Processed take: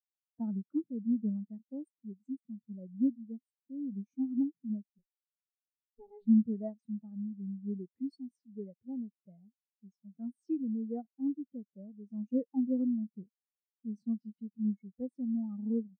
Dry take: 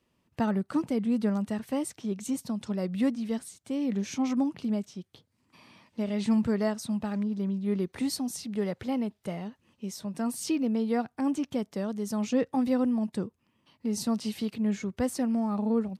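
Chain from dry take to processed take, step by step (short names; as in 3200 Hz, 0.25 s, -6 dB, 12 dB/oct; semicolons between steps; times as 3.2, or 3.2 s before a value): 4.98–6.26 minimum comb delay 7.2 ms; spectral expander 2.5:1; gain -1.5 dB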